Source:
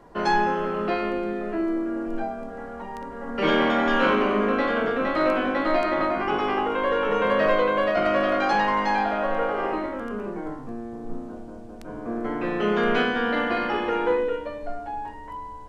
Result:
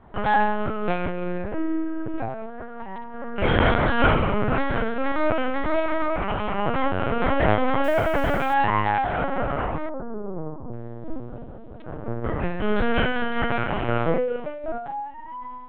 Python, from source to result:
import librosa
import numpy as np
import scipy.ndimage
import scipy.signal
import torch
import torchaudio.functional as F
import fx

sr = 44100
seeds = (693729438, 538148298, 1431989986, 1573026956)

y = fx.lpc_vocoder(x, sr, seeds[0], excitation='pitch_kept', order=8)
y = fx.quant_dither(y, sr, seeds[1], bits=8, dither='none', at=(7.84, 8.54))
y = fx.lowpass(y, sr, hz=1100.0, slope=24, at=(9.89, 10.73))
y = fx.am_noise(y, sr, seeds[2], hz=5.7, depth_pct=50)
y = y * librosa.db_to_amplitude(4.0)